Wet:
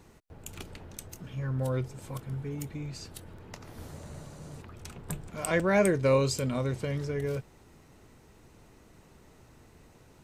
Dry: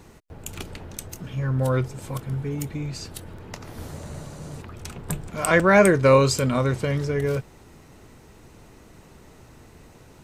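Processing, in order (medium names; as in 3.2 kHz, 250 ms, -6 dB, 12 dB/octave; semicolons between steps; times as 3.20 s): dynamic bell 1.3 kHz, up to -6 dB, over -36 dBFS, Q 1.5; trim -7.5 dB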